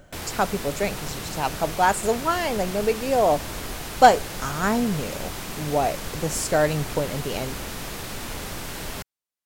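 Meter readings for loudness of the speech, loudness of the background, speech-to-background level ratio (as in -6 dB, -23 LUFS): -24.0 LUFS, -33.0 LUFS, 9.0 dB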